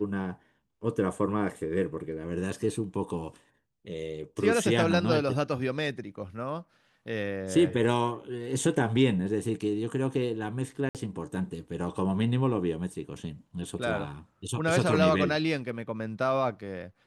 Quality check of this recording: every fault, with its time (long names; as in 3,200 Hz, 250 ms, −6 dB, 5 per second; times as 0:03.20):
0:10.89–0:10.95: drop-out 58 ms